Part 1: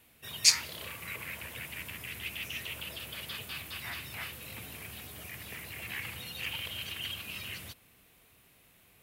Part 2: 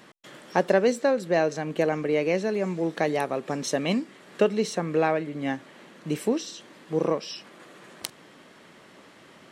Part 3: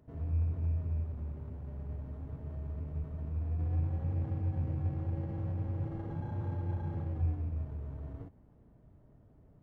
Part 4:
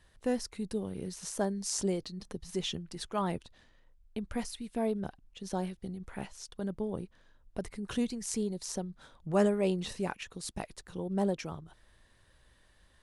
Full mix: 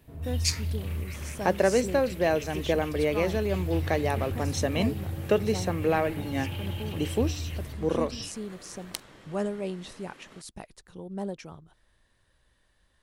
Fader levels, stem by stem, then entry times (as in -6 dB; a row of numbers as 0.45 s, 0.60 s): -6.0 dB, -2.0 dB, +1.0 dB, -4.0 dB; 0.00 s, 0.90 s, 0.00 s, 0.00 s